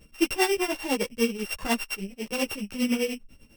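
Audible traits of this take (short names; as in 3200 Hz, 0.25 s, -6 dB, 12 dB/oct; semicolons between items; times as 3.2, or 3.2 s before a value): a buzz of ramps at a fixed pitch in blocks of 16 samples; tremolo triangle 10 Hz, depth 90%; a shimmering, thickened sound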